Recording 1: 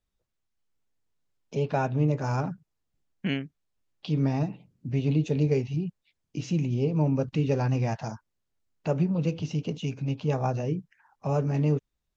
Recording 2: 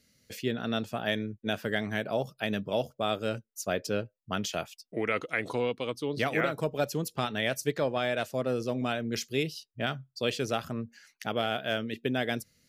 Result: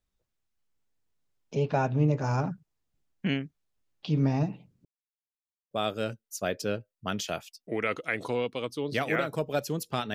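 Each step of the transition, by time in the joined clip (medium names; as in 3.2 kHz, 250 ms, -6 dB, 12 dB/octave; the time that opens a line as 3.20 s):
recording 1
4.85–5.71 s: mute
5.71 s: go over to recording 2 from 2.96 s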